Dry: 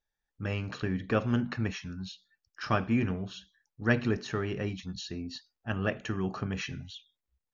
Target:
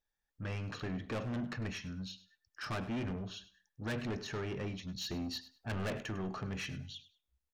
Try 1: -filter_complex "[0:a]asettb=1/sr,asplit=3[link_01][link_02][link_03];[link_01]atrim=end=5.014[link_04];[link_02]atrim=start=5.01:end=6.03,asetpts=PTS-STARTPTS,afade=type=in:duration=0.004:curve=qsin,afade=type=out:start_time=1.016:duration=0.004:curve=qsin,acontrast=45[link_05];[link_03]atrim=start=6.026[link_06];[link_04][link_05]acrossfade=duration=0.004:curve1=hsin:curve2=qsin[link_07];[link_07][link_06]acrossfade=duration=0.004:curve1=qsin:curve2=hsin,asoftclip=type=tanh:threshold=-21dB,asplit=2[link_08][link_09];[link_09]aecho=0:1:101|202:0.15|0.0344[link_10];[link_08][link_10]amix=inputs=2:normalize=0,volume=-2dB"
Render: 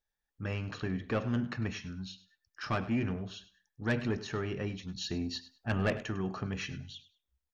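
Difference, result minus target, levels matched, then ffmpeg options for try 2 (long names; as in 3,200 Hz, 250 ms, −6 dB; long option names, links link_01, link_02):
soft clipping: distortion −8 dB
-filter_complex "[0:a]asettb=1/sr,asplit=3[link_01][link_02][link_03];[link_01]atrim=end=5.014[link_04];[link_02]atrim=start=5.01:end=6.03,asetpts=PTS-STARTPTS,afade=type=in:duration=0.004:curve=qsin,afade=type=out:start_time=1.016:duration=0.004:curve=qsin,acontrast=45[link_05];[link_03]atrim=start=6.026[link_06];[link_04][link_05]acrossfade=duration=0.004:curve1=hsin:curve2=qsin[link_07];[link_07][link_06]acrossfade=duration=0.004:curve1=qsin:curve2=hsin,asoftclip=type=tanh:threshold=-32dB,asplit=2[link_08][link_09];[link_09]aecho=0:1:101|202:0.15|0.0344[link_10];[link_08][link_10]amix=inputs=2:normalize=0,volume=-2dB"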